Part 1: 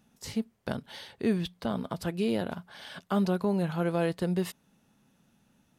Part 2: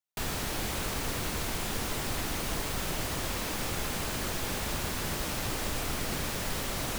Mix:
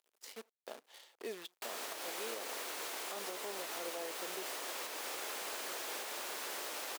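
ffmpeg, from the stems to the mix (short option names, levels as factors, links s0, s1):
-filter_complex "[0:a]bandreject=f=1500:w=5.9,acrusher=bits=7:dc=4:mix=0:aa=0.000001,volume=0.335[s0];[1:a]adelay=1450,volume=0.531[s1];[s0][s1]amix=inputs=2:normalize=0,highpass=f=390:w=0.5412,highpass=f=390:w=1.3066,alimiter=level_in=2.24:limit=0.0631:level=0:latency=1:release=187,volume=0.447"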